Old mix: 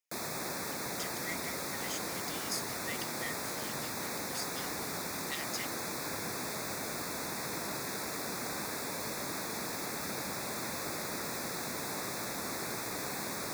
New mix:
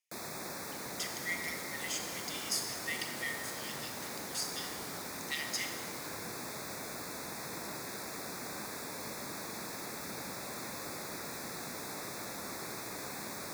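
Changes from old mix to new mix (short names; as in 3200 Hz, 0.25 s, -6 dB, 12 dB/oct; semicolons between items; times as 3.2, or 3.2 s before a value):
background -6.0 dB; reverb: on, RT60 1.4 s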